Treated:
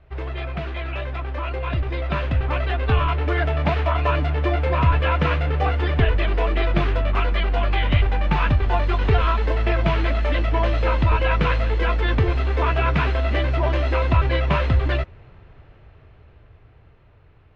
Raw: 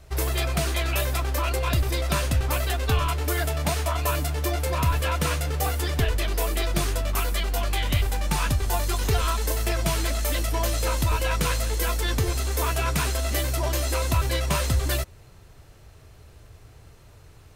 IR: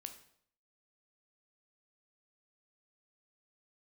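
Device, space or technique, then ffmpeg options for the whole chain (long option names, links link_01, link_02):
action camera in a waterproof case: -af "lowpass=frequency=2900:width=0.5412,lowpass=frequency=2900:width=1.3066,dynaudnorm=framelen=370:gausssize=13:maxgain=9dB,volume=-3dB" -ar 32000 -c:a aac -b:a 96k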